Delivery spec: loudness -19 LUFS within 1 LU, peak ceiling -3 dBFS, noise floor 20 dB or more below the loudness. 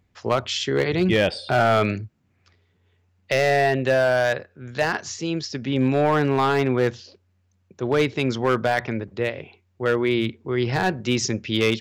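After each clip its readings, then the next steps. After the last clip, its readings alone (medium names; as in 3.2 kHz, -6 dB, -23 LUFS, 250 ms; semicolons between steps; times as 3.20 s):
clipped samples 0.8%; clipping level -12.5 dBFS; loudness -22.5 LUFS; peak level -12.5 dBFS; loudness target -19.0 LUFS
-> clip repair -12.5 dBFS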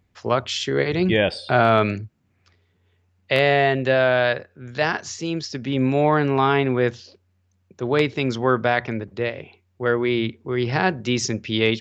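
clipped samples 0.0%; loudness -21.5 LUFS; peak level -3.5 dBFS; loudness target -19.0 LUFS
-> trim +2.5 dB; peak limiter -3 dBFS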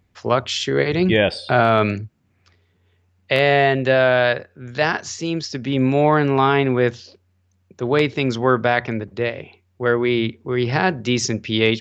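loudness -19.0 LUFS; peak level -3.0 dBFS; noise floor -64 dBFS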